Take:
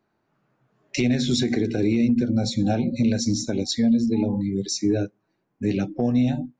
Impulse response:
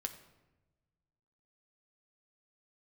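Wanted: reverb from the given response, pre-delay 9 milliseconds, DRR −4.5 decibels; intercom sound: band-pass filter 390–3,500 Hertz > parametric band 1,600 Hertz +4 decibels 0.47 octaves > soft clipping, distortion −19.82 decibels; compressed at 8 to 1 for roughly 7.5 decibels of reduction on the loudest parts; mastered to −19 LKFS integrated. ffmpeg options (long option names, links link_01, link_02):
-filter_complex "[0:a]acompressor=threshold=-24dB:ratio=8,asplit=2[link_01][link_02];[1:a]atrim=start_sample=2205,adelay=9[link_03];[link_02][link_03]afir=irnorm=-1:irlink=0,volume=6dB[link_04];[link_01][link_04]amix=inputs=2:normalize=0,highpass=390,lowpass=3500,equalizer=frequency=1600:width_type=o:width=0.47:gain=4,asoftclip=threshold=-19dB,volume=11.5dB"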